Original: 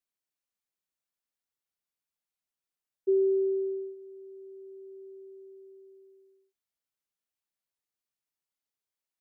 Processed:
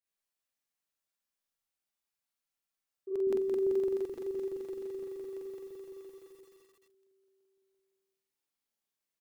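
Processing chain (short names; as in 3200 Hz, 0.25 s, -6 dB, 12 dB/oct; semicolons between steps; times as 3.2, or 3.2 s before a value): compressor 5:1, threshold -32 dBFS, peak gain reduction 9 dB; bell 280 Hz -3 dB 1.1 oct, from 3.27 s +10 dB, from 4.71 s +4 dB; outdoor echo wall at 290 m, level -30 dB; Schroeder reverb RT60 0.72 s, combs from 28 ms, DRR -9.5 dB; limiter -15.5 dBFS, peak gain reduction 5.5 dB; crackling interface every 0.17 s, samples 2048, repeat, from 0.56; lo-fi delay 0.214 s, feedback 80%, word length 9-bit, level -5.5 dB; gain -8.5 dB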